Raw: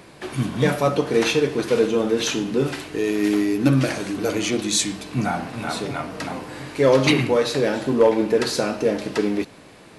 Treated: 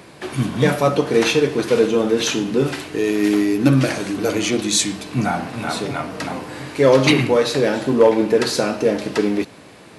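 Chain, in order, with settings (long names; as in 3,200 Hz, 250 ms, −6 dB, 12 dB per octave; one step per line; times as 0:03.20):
high-pass filter 60 Hz
level +3 dB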